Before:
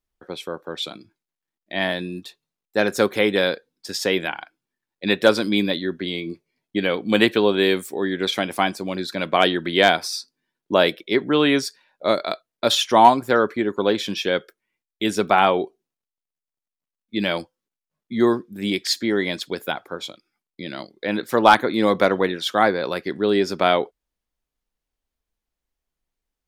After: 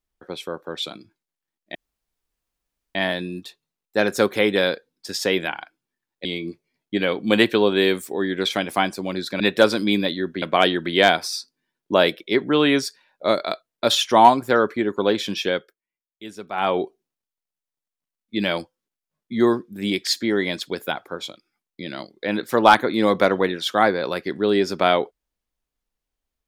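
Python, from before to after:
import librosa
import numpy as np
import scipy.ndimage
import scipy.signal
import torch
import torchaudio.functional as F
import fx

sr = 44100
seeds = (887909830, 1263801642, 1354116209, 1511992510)

y = fx.edit(x, sr, fx.insert_room_tone(at_s=1.75, length_s=1.2),
    fx.move(start_s=5.05, length_s=1.02, to_s=9.22),
    fx.fade_down_up(start_s=14.28, length_s=1.31, db=-15.0, fade_s=0.27), tone=tone)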